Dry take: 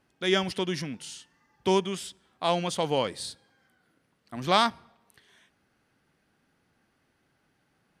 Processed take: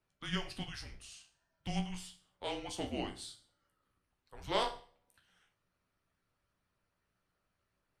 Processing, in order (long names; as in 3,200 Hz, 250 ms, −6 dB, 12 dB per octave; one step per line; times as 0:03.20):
resonators tuned to a chord C2 minor, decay 0.41 s
harmonic and percussive parts rebalanced harmonic −8 dB
frequency shifter −210 Hz
level +4.5 dB